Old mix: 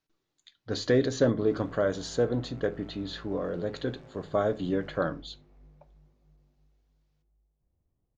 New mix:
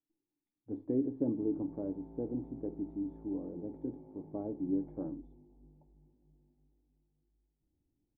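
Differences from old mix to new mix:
background +8.5 dB
master: add formant resonators in series u

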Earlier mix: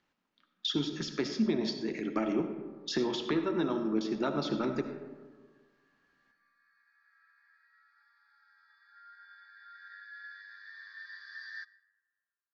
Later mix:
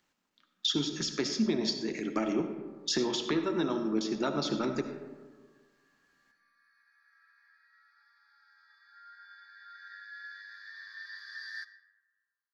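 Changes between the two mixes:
background: send +6.0 dB
master: remove high-frequency loss of the air 140 metres

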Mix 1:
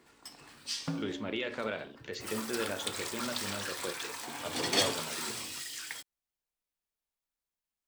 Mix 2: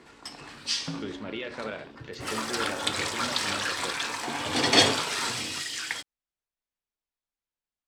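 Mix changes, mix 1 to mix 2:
first sound +10.5 dB
master: add high-frequency loss of the air 58 metres

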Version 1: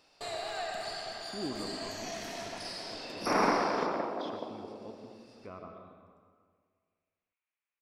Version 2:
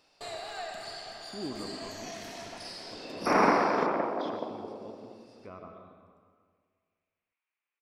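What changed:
first sound: send −8.5 dB
second sound +4.0 dB

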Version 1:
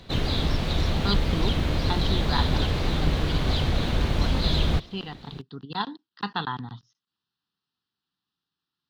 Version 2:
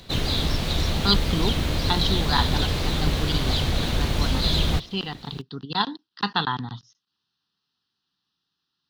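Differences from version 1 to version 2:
speech +4.0 dB
master: add high-shelf EQ 4,800 Hz +11.5 dB

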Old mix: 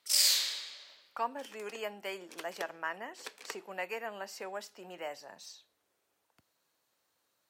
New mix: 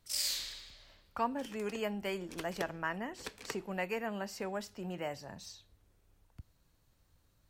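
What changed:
first sound −8.5 dB
master: remove high-pass filter 460 Hz 12 dB per octave

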